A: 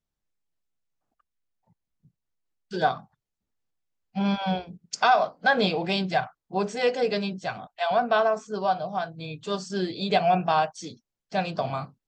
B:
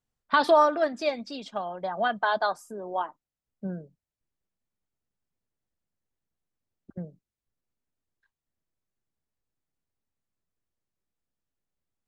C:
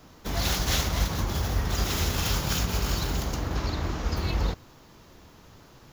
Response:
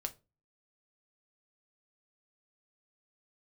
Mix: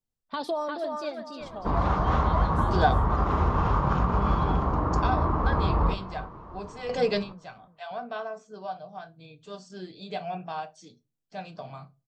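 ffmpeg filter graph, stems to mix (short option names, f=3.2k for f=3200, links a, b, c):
-filter_complex "[0:a]volume=-1dB,asplit=2[a][b];[b]volume=-14dB[c];[1:a]volume=-4.5dB,asplit=3[d][e][f];[e]volume=-11dB[g];[2:a]lowpass=f=1.1k:t=q:w=4.5,adelay=1400,volume=1.5dB,asplit=3[h][i][j];[i]volume=-3.5dB[k];[j]volume=-16dB[l];[f]apad=whole_len=532563[m];[a][m]sidechaingate=range=-21dB:threshold=-60dB:ratio=16:detection=peak[n];[d][h]amix=inputs=2:normalize=0,equalizer=f=1.6k:t=o:w=1.4:g=-11.5,acompressor=threshold=-27dB:ratio=2.5,volume=0dB[o];[3:a]atrim=start_sample=2205[p];[c][k]amix=inputs=2:normalize=0[q];[q][p]afir=irnorm=-1:irlink=0[r];[g][l]amix=inputs=2:normalize=0,aecho=0:1:350|700|1050|1400|1750:1|0.32|0.102|0.0328|0.0105[s];[n][o][r][s]amix=inputs=4:normalize=0"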